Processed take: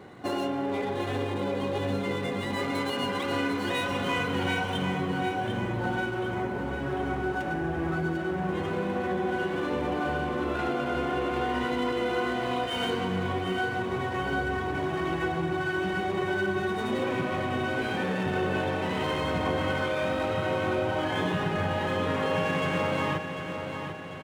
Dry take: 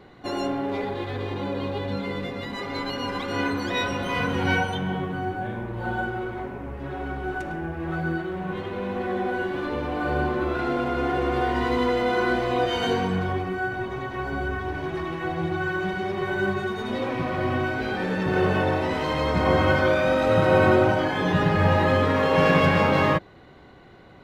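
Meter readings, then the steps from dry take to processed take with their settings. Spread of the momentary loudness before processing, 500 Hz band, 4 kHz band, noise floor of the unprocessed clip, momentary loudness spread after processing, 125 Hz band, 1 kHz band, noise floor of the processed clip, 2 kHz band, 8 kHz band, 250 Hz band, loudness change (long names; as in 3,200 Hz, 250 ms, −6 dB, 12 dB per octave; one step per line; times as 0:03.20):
11 LU, −5.0 dB, −1.5 dB, −48 dBFS, 3 LU, −5.5 dB, −4.0 dB, −34 dBFS, −3.5 dB, can't be measured, −3.5 dB, −4.5 dB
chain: running median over 9 samples
high-pass filter 83 Hz
dynamic equaliser 3,000 Hz, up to +6 dB, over −46 dBFS, Q 2.2
downward compressor 5 to 1, threshold −29 dBFS, peak gain reduction 13.5 dB
repeating echo 746 ms, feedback 53%, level −8 dB
level +2.5 dB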